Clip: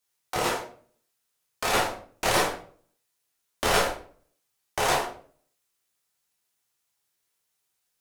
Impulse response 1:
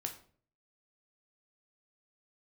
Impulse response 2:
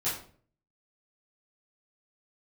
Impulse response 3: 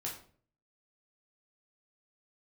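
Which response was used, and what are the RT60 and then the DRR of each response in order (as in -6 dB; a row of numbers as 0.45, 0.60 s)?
3; 0.50, 0.50, 0.50 s; 3.5, -12.0, -3.5 dB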